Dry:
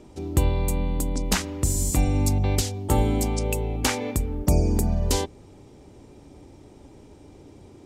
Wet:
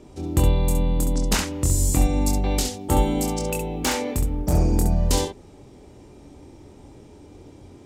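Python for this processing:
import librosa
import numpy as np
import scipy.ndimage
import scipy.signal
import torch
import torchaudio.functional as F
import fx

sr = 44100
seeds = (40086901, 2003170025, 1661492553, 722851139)

y = fx.overload_stage(x, sr, gain_db=17.0, at=(3.31, 4.74))
y = fx.room_early_taps(y, sr, ms=(24, 67), db=(-4.5, -6.5))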